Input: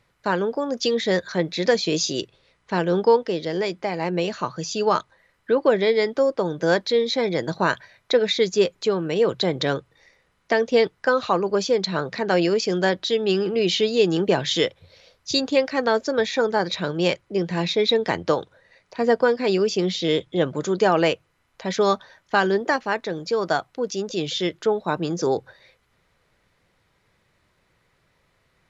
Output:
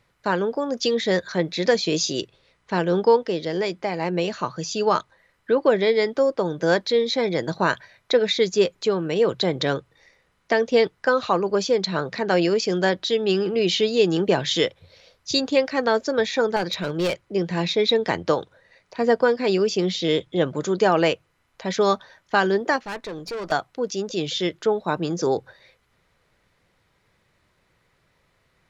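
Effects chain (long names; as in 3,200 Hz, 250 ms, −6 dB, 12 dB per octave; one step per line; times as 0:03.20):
0:16.56–0:17.21: hard clipping −18 dBFS, distortion −26 dB
0:22.79–0:23.52: tube saturation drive 27 dB, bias 0.45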